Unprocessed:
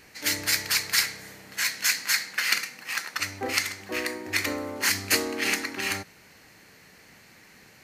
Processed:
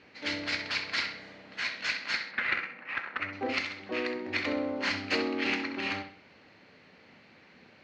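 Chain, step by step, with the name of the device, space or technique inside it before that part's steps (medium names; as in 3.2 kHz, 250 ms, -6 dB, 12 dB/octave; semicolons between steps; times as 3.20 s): 2.31–3.33 s: resonant high shelf 3 kHz -13.5 dB, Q 1.5; analogue delay pedal into a guitar amplifier (bucket-brigade echo 65 ms, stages 2048, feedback 38%, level -9 dB; valve stage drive 12 dB, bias 0.4; cabinet simulation 81–4000 Hz, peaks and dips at 130 Hz -4 dB, 250 Hz +4 dB, 560 Hz +4 dB, 1.8 kHz -4 dB); trim -1.5 dB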